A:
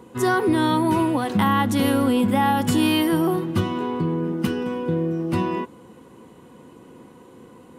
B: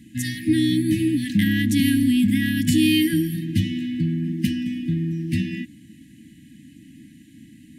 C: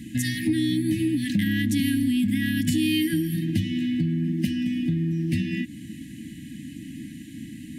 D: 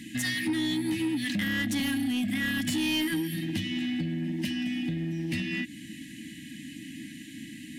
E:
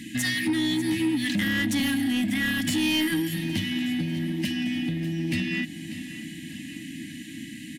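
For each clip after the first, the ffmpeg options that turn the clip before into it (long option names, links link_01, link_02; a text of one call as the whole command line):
ffmpeg -i in.wav -af "acontrast=55,afftfilt=real='re*(1-between(b*sr/4096,330,1600))':imag='im*(1-between(b*sr/4096,330,1600))':win_size=4096:overlap=0.75,volume=-3.5dB" out.wav
ffmpeg -i in.wav -af "acompressor=threshold=-33dB:ratio=3,volume=8dB" out.wav
ffmpeg -i in.wav -filter_complex "[0:a]asplit=2[link_01][link_02];[link_02]highpass=frequency=720:poles=1,volume=18dB,asoftclip=type=tanh:threshold=-11dB[link_03];[link_01][link_03]amix=inputs=2:normalize=0,lowpass=frequency=6200:poles=1,volume=-6dB,volume=-8dB" out.wav
ffmpeg -i in.wav -af "aecho=1:1:593|1186|1779|2372|2965|3558:0.2|0.112|0.0626|0.035|0.0196|0.011,volume=3.5dB" out.wav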